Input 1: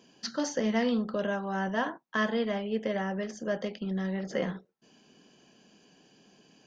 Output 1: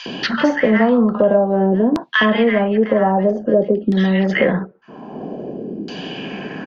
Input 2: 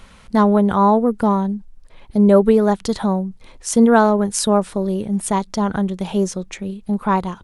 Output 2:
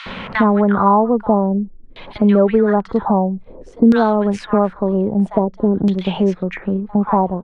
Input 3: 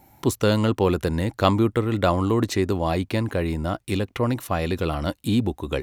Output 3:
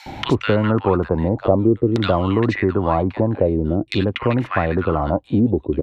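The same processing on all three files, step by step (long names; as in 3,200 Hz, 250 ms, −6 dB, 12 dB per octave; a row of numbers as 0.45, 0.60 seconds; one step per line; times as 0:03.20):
multiband delay without the direct sound highs, lows 60 ms, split 1,300 Hz
auto-filter low-pass saw down 0.51 Hz 310–4,400 Hz
multiband upward and downward compressor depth 70%
normalise the peak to −1.5 dBFS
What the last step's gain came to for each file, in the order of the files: +14.5, 0.0, +2.5 decibels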